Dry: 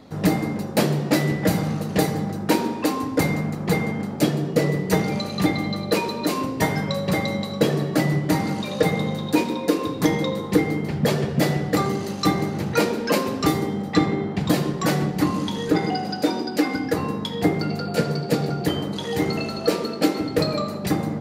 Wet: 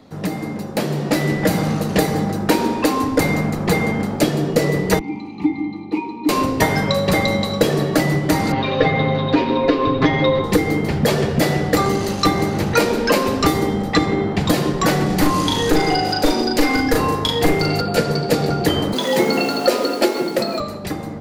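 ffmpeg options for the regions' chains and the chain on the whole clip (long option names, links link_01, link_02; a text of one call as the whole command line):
ffmpeg -i in.wav -filter_complex "[0:a]asettb=1/sr,asplit=3[link_01][link_02][link_03];[link_01]atrim=end=4.994[link_04];[link_02]atrim=start=4.99:end=6.29,asetpts=PTS-STARTPTS,afade=type=in:duration=0.004:curve=qsin,afade=type=out:start_time=1.296:duration=0.004:curve=qsin,asplit=3[link_05][link_06][link_07];[link_05]bandpass=frequency=300:width_type=q:width=8,volume=0dB[link_08];[link_06]bandpass=frequency=870:width_type=q:width=8,volume=-6dB[link_09];[link_07]bandpass=frequency=2240:width_type=q:width=8,volume=-9dB[link_10];[link_08][link_09][link_10]amix=inputs=3:normalize=0,lowshelf=frequency=190:gain=7.5[link_11];[link_03]atrim=start=6.286[link_12];[link_04][link_11]acrossfade=duration=0.004:curve1=hsin:curve2=qsin[link_13];[link_13][link_12]acrossfade=duration=0.004:curve1=qsin:curve2=hsin,asettb=1/sr,asplit=3[link_14][link_15][link_16];[link_14]atrim=end=8.524[link_17];[link_15]atrim=start=8.52:end=10.44,asetpts=PTS-STARTPTS,afade=type=in:duration=0.004:curve=qsin,afade=type=out:start_time=1.916:duration=0.004:curve=qsin,lowpass=frequency=3500:width=0.5412,lowpass=frequency=3500:width=1.3066,bandreject=frequency=910:width=21,aecho=1:1:7.5:0.91,atrim=end_sample=84672[link_18];[link_16]atrim=start=10.436[link_19];[link_17][link_18]acrossfade=duration=0.004:curve1=hsin:curve2=qsin[link_20];[link_20][link_19]acrossfade=duration=0.004:curve1=qsin:curve2=hsin,asettb=1/sr,asplit=3[link_21][link_22][link_23];[link_21]atrim=end=15.064[link_24];[link_22]atrim=start=15.06:end=17.81,asetpts=PTS-STARTPTS,afade=type=in:duration=0.004:curve=qsin,afade=type=out:start_time=2.746:duration=0.004:curve=qsin,highshelf=frequency=4000:gain=5,asplit=2[link_25][link_26];[link_26]adelay=38,volume=-2dB[link_27];[link_25][link_27]amix=inputs=2:normalize=0,atrim=end_sample=121275,aeval=exprs='clip(val(0),-1,0.141)':channel_layout=same[link_28];[link_23]atrim=start=17.806[link_29];[link_24][link_28]acrossfade=duration=0.004:curve1=hsin:curve2=qsin[link_30];[link_30][link_29]acrossfade=duration=0.004:curve1=qsin:curve2=hsin,asettb=1/sr,asplit=3[link_31][link_32][link_33];[link_31]atrim=end=18.924[link_34];[link_32]atrim=start=18.92:end=20.6,asetpts=PTS-STARTPTS,afade=type=in:duration=0.004:curve=qsin,afade=type=out:start_time=1.676:duration=0.004:curve=qsin,highpass=56,acrusher=bits=6:mix=0:aa=0.5,afreqshift=55[link_35];[link_33]atrim=start=20.596[link_36];[link_34][link_35]acrossfade=duration=0.004:curve1=hsin:curve2=qsin[link_37];[link_37][link_36]acrossfade=duration=0.004:curve1=qsin:curve2=hsin,acrossover=split=110|4300[link_38][link_39][link_40];[link_38]acompressor=threshold=-41dB:ratio=4[link_41];[link_39]acompressor=threshold=-20dB:ratio=4[link_42];[link_40]acompressor=threshold=-36dB:ratio=4[link_43];[link_41][link_42][link_43]amix=inputs=3:normalize=0,asubboost=boost=7:cutoff=55,dynaudnorm=framelen=120:gausssize=17:maxgain=11.5dB" out.wav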